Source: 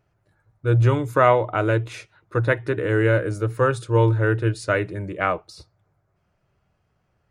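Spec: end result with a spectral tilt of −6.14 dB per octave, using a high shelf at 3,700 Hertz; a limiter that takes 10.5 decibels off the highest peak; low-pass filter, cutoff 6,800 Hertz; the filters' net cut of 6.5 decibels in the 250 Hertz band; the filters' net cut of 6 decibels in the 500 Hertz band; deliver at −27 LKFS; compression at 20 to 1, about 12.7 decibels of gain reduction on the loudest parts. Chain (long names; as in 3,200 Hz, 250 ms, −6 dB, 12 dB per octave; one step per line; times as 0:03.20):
low-pass filter 6,800 Hz
parametric band 250 Hz −8 dB
parametric band 500 Hz −5 dB
high-shelf EQ 3,700 Hz −6.5 dB
downward compressor 20 to 1, threshold −28 dBFS
level +9 dB
brickwall limiter −16 dBFS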